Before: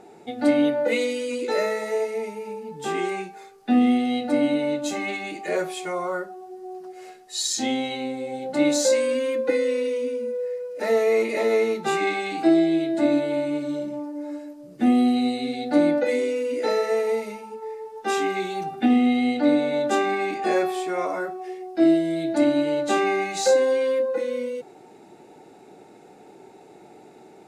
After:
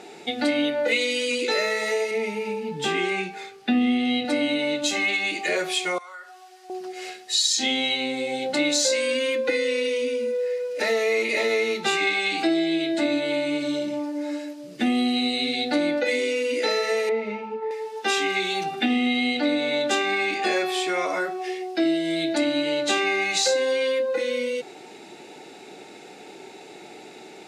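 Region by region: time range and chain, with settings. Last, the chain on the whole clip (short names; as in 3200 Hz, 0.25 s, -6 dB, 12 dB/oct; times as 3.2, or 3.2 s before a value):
2.11–4.25 tone controls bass +8 dB, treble -6 dB + notch 1100 Hz, Q 23
5.98–6.7 Chebyshev high-pass 1200 Hz + compressor 5:1, threshold -46 dBFS
17.09–17.71 LPF 1800 Hz + low shelf 190 Hz +9 dB
whole clip: weighting filter D; compressor 2.5:1, threshold -28 dBFS; gain +4.5 dB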